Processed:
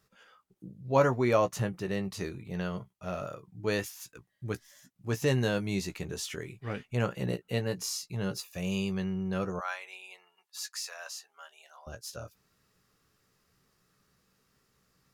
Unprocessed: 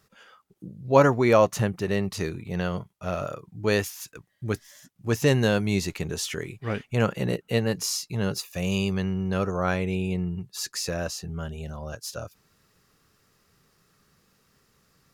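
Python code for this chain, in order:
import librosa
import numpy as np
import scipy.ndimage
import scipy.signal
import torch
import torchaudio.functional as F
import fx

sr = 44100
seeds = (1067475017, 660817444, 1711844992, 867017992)

y = fx.highpass(x, sr, hz=810.0, slope=24, at=(9.59, 11.87))
y = fx.doubler(y, sr, ms=16.0, db=-9.0)
y = y * librosa.db_to_amplitude(-7.0)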